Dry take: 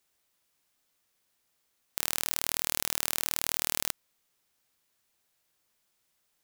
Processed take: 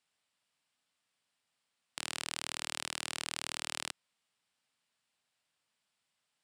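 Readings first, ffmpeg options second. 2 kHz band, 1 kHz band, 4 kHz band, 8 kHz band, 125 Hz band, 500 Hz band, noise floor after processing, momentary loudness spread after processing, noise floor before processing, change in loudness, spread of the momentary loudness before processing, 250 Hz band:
-3.0 dB, -3.5 dB, -3.5 dB, -8.5 dB, -6.5 dB, -6.5 dB, -84 dBFS, 6 LU, -76 dBFS, -8.5 dB, 6 LU, -6.0 dB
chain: -af "highpass=120,equalizer=f=360:t=q:w=4:g=-10,equalizer=f=510:t=q:w=4:g=-3,equalizer=f=2.9k:t=q:w=4:g=3,equalizer=f=6.3k:t=q:w=4:g=-8,lowpass=f=8.8k:w=0.5412,lowpass=f=8.8k:w=1.3066,volume=-3.5dB"

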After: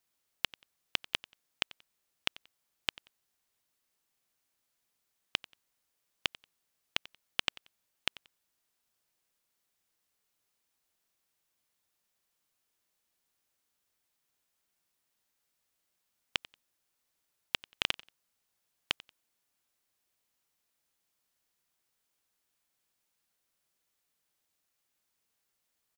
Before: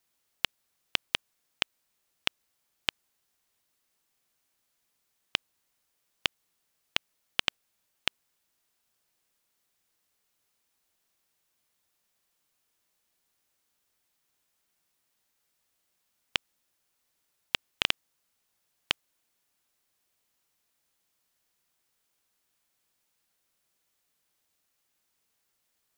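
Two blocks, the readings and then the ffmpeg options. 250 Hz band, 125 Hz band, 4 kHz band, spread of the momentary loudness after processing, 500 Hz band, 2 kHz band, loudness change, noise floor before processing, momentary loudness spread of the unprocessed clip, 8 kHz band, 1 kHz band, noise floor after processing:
-4.0 dB, -4.0 dB, -4.0 dB, 5 LU, -4.0 dB, -4.0 dB, -4.0 dB, -78 dBFS, 5 LU, -4.0 dB, -4.0 dB, -81 dBFS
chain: -af "aecho=1:1:91|182:0.1|0.024,volume=-4dB"

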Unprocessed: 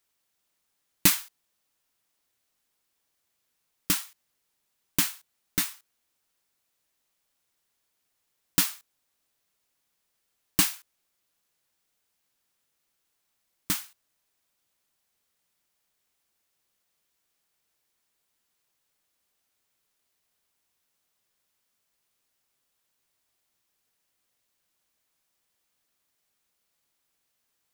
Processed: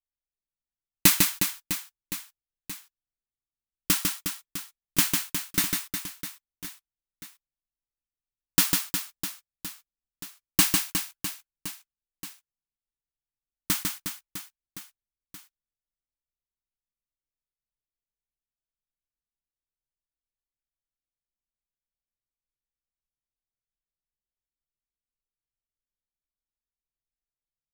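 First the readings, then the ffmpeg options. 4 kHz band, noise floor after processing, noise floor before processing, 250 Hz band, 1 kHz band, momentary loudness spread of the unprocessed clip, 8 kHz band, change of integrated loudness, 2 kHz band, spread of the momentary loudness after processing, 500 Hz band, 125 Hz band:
+4.0 dB, under -85 dBFS, -78 dBFS, +4.0 dB, +4.0 dB, 10 LU, +4.0 dB, +1.0 dB, +4.0 dB, 21 LU, +4.0 dB, +4.0 dB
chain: -af "anlmdn=0.0631,aecho=1:1:150|360|654|1066|1642:0.631|0.398|0.251|0.158|0.1,volume=2dB"

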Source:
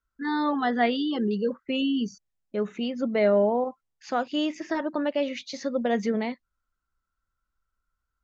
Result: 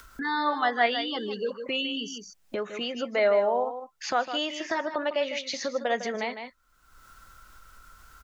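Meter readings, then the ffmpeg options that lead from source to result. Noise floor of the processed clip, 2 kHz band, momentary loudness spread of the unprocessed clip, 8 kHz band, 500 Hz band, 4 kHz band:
-65 dBFS, +4.0 dB, 9 LU, n/a, -1.0 dB, +4.5 dB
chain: -filter_complex "[0:a]lowshelf=f=430:g=-6.5,acrossover=split=450|980[a][b][c];[a]acompressor=threshold=-45dB:ratio=5[d];[d][b][c]amix=inputs=3:normalize=0,aecho=1:1:154:0.299,acompressor=mode=upward:threshold=-31dB:ratio=2.5,volume=3.5dB"

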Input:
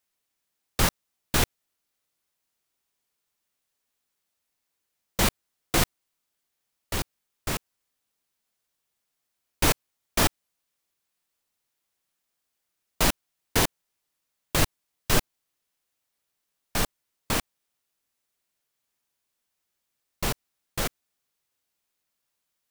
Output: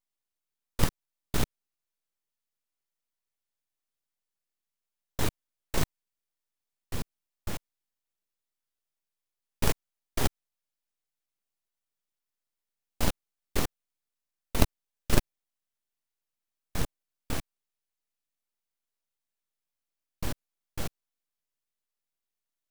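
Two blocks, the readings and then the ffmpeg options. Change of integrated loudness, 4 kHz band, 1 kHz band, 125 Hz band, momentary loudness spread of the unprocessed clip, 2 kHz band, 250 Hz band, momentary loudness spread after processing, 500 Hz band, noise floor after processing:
-6.5 dB, -9.5 dB, -8.0 dB, -2.5 dB, 10 LU, -9.0 dB, -3.5 dB, 14 LU, -5.5 dB, under -85 dBFS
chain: -af "lowshelf=f=370:g=10.5,aeval=exprs='abs(val(0))':c=same,aeval=exprs='1*(cos(1*acos(clip(val(0)/1,-1,1)))-cos(1*PI/2))+0.178*(cos(3*acos(clip(val(0)/1,-1,1)))-cos(3*PI/2))+0.0562*(cos(4*acos(clip(val(0)/1,-1,1)))-cos(4*PI/2))':c=same,volume=-2dB"

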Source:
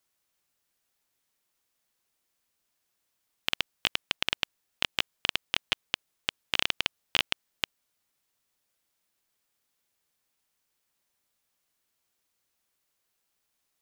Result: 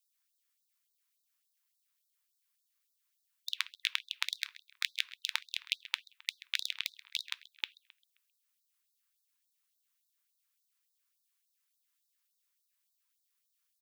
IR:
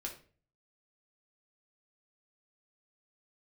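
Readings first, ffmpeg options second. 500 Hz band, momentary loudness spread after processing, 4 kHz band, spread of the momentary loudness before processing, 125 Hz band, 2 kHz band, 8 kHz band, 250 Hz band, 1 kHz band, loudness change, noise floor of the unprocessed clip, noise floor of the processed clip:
under -40 dB, 7 LU, -6.5 dB, 7 LU, under -40 dB, -6.0 dB, -3.5 dB, under -40 dB, -12.0 dB, -6.0 dB, -79 dBFS, -81 dBFS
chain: -filter_complex "[0:a]highshelf=f=12k:g=6,aeval=exprs='val(0)*sin(2*PI*570*n/s)':c=same,asplit=2[a][b];[b]adelay=132,lowpass=f=3.7k:p=1,volume=-15dB,asplit=2[c][d];[d]adelay=132,lowpass=f=3.7k:p=1,volume=0.51,asplit=2[e][f];[f]adelay=132,lowpass=f=3.7k:p=1,volume=0.51,asplit=2[g][h];[h]adelay=132,lowpass=f=3.7k:p=1,volume=0.51,asplit=2[i][j];[j]adelay=132,lowpass=f=3.7k:p=1,volume=0.51[k];[a][c][e][g][i][k]amix=inputs=6:normalize=0,asplit=2[l][m];[1:a]atrim=start_sample=2205,asetrate=48510,aresample=44100[n];[m][n]afir=irnorm=-1:irlink=0,volume=-12.5dB[o];[l][o]amix=inputs=2:normalize=0,afftfilt=real='re*gte(b*sr/1024,870*pow(3700/870,0.5+0.5*sin(2*PI*3.5*pts/sr)))':imag='im*gte(b*sr/1024,870*pow(3700/870,0.5+0.5*sin(2*PI*3.5*pts/sr)))':win_size=1024:overlap=0.75,volume=-3dB"

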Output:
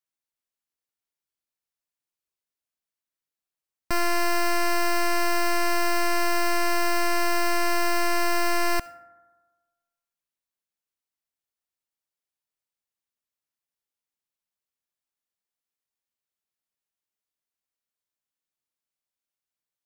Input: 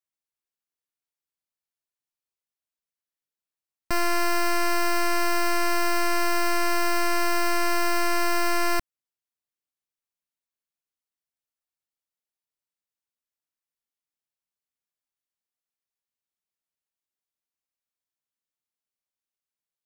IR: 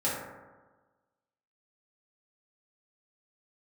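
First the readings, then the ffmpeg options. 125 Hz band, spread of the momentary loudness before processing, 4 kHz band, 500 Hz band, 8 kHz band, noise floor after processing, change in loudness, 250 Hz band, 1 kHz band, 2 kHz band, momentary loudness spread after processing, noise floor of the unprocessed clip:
0.0 dB, 1 LU, 0.0 dB, +0.5 dB, 0.0 dB, under -85 dBFS, 0.0 dB, -0.5 dB, 0.0 dB, +0.5 dB, 1 LU, under -85 dBFS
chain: -filter_complex "[0:a]asplit=2[a][b];[1:a]atrim=start_sample=2205,lowshelf=f=290:g=-11.5,adelay=65[c];[b][c]afir=irnorm=-1:irlink=0,volume=-23dB[d];[a][d]amix=inputs=2:normalize=0"

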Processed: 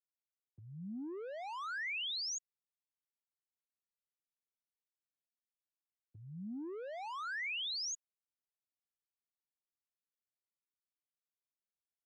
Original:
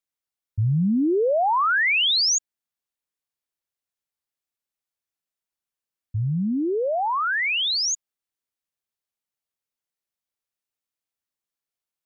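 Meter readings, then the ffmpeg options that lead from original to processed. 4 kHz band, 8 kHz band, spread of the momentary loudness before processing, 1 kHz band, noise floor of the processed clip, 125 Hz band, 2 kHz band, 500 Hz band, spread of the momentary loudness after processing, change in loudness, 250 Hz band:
-17.5 dB, n/a, 10 LU, -21.0 dB, under -85 dBFS, -27.0 dB, -18.0 dB, -22.5 dB, 13 LU, -18.5 dB, -21.5 dB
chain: -filter_complex "[0:a]alimiter=limit=-23.5dB:level=0:latency=1,areverse,acompressor=mode=upward:threshold=-51dB:ratio=2.5,areverse,anlmdn=0.0251,tiltshelf=f=790:g=-4,acrossover=split=180|870[a][b][c];[a]acompressor=threshold=-42dB:ratio=4[d];[b]acompressor=threshold=-33dB:ratio=4[e];[c]acompressor=threshold=-35dB:ratio=4[f];[d][e][f]amix=inputs=3:normalize=0,highpass=95,acrossover=split=300|1800[g][h][i];[h]asoftclip=type=tanh:threshold=-38dB[j];[g][j][i]amix=inputs=3:normalize=0,lowshelf=f=170:g=-12,volume=-5.5dB"

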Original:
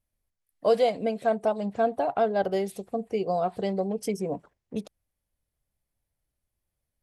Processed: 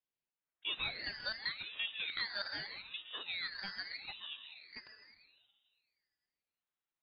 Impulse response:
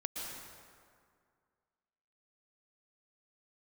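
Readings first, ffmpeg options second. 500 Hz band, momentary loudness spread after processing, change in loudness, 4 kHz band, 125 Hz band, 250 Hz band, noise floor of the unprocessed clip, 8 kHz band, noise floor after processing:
-33.0 dB, 13 LU, -12.0 dB, +6.5 dB, -22.5 dB, -29.5 dB, -85 dBFS, under -30 dB, under -85 dBFS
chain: -filter_complex "[0:a]aderivative,bandreject=f=202.6:t=h:w=4,bandreject=f=405.2:t=h:w=4,bandreject=f=607.8:t=h:w=4,bandreject=f=810.4:t=h:w=4,bandreject=f=1.013k:t=h:w=4,bandreject=f=1.2156k:t=h:w=4,bandreject=f=1.4182k:t=h:w=4,bandreject=f=1.6208k:t=h:w=4,bandreject=f=1.8234k:t=h:w=4,bandreject=f=2.026k:t=h:w=4,bandreject=f=2.2286k:t=h:w=4,bandreject=f=2.4312k:t=h:w=4,bandreject=f=2.6338k:t=h:w=4,bandreject=f=2.8364k:t=h:w=4,bandreject=f=3.039k:t=h:w=4,bandreject=f=3.2416k:t=h:w=4,bandreject=f=3.4442k:t=h:w=4,bandreject=f=3.6468k:t=h:w=4,bandreject=f=3.8494k:t=h:w=4,bandreject=f=4.052k:t=h:w=4,bandreject=f=4.2546k:t=h:w=4,bandreject=f=4.4572k:t=h:w=4,bandreject=f=4.6598k:t=h:w=4,bandreject=f=4.8624k:t=h:w=4,bandreject=f=5.065k:t=h:w=4,bandreject=f=5.2676k:t=h:w=4,bandreject=f=5.4702k:t=h:w=4,bandreject=f=5.6728k:t=h:w=4,bandreject=f=5.8754k:t=h:w=4,bandreject=f=6.078k:t=h:w=4,bandreject=f=6.2806k:t=h:w=4,acompressor=threshold=-47dB:ratio=1.5,asplit=2[a][b];[1:a]atrim=start_sample=2205,asetrate=43659,aresample=44100,lowshelf=f=180:g=11[c];[b][c]afir=irnorm=-1:irlink=0,volume=-3dB[d];[a][d]amix=inputs=2:normalize=0,lowpass=f=3.1k:t=q:w=0.5098,lowpass=f=3.1k:t=q:w=0.6013,lowpass=f=3.1k:t=q:w=0.9,lowpass=f=3.1k:t=q:w=2.563,afreqshift=-3700,aeval=exprs='val(0)*sin(2*PI*910*n/s+910*0.7/0.81*sin(2*PI*0.81*n/s))':c=same,volume=6.5dB"

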